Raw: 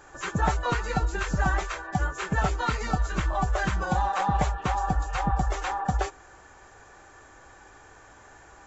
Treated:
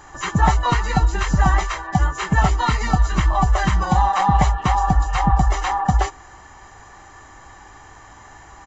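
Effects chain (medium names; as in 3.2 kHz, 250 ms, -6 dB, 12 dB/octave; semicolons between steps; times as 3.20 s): comb 1 ms, depth 50%; trim +6.5 dB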